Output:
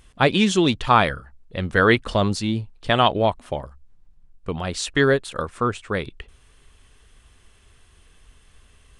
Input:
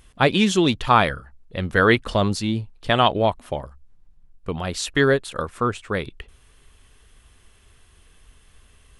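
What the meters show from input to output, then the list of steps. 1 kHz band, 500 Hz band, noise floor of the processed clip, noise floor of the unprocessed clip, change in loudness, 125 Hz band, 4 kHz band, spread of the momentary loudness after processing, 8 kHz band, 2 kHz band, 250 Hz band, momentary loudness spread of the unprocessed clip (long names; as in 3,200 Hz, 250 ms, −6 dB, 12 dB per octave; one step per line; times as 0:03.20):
0.0 dB, 0.0 dB, −55 dBFS, −55 dBFS, 0.0 dB, 0.0 dB, 0.0 dB, 15 LU, 0.0 dB, 0.0 dB, 0.0 dB, 15 LU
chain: downsampling to 22,050 Hz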